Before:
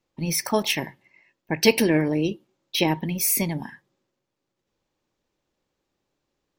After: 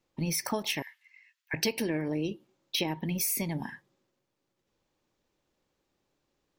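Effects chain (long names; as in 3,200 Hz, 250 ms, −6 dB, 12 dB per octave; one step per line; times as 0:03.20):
0:00.82–0:01.54: high-pass filter 1,500 Hz 24 dB per octave
downward compressor 5 to 1, threshold −28 dBFS, peak gain reduction 15.5 dB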